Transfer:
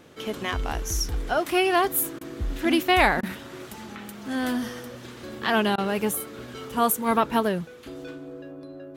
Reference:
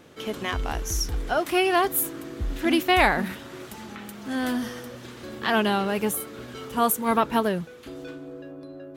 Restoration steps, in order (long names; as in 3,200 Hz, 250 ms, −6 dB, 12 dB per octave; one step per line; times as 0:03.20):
repair the gap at 0:02.19/0:03.21/0:05.76, 19 ms